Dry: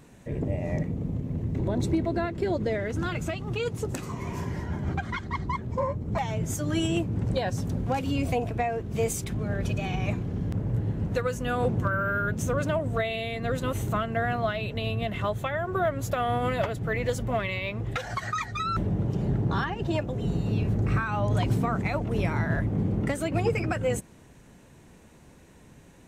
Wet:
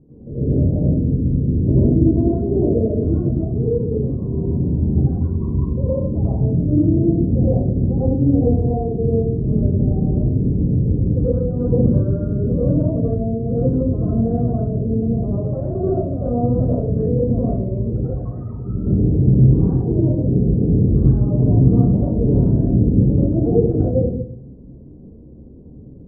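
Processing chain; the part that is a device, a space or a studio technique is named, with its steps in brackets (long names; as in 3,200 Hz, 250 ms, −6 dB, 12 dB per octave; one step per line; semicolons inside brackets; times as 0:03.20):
next room (low-pass filter 450 Hz 24 dB per octave; convolution reverb RT60 0.65 s, pre-delay 82 ms, DRR −9.5 dB)
level +2.5 dB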